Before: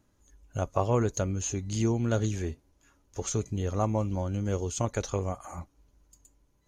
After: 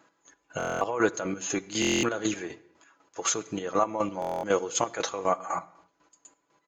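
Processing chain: high-pass 300 Hz 12 dB/octave; peaking EQ 1.3 kHz +9 dB 2.3 oct; band-stop 5.8 kHz, Q 10; comb 6.1 ms, depth 44%; peak limiter -18 dBFS, peak gain reduction 11.5 dB; square tremolo 4 Hz, depth 65%, duty 35%; on a send at -17 dB: reverberation, pre-delay 7 ms; on the sum: resampled via 16 kHz; buffer glitch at 0.58/1.80/4.20 s, samples 1024, times 9; trim +6.5 dB

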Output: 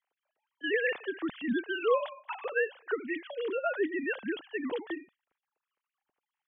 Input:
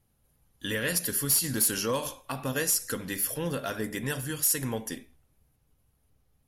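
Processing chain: formants replaced by sine waves; trim -2.5 dB

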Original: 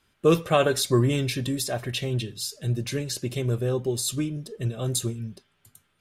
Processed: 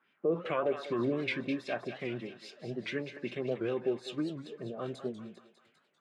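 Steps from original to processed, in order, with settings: high-pass 180 Hz 24 dB/octave; peak limiter -18 dBFS, peak gain reduction 9.5 dB; LFO low-pass sine 2.5 Hz 620–2700 Hz; on a send: thinning echo 199 ms, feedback 64%, high-pass 730 Hz, level -9 dB; on the sum: warped record 78 rpm, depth 160 cents; trim -6 dB

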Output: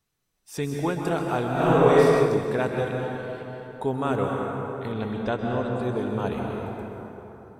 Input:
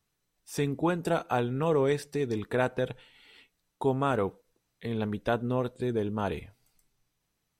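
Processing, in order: 4.92–5.71 s: steep low-pass 8.7 kHz 96 dB/octave; plate-style reverb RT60 3.8 s, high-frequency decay 0.5×, pre-delay 115 ms, DRR 0 dB; 1.52–2.14 s: reverb throw, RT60 1.2 s, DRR -6.5 dB

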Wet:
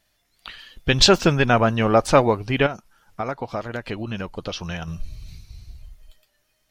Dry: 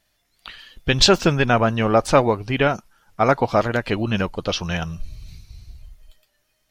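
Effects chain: 2.66–4.88 s: compression 3:1, threshold -28 dBFS, peak gain reduction 12.5 dB

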